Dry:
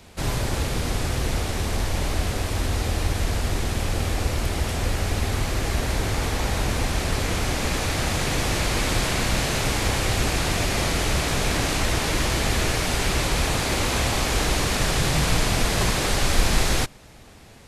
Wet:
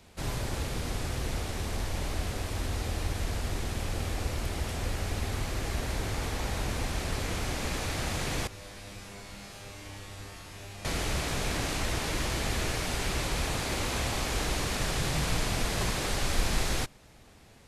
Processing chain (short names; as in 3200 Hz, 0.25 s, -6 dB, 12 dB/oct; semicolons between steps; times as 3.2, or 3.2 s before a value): 8.47–10.85 resonator 100 Hz, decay 1 s, harmonics all, mix 90%; gain -8 dB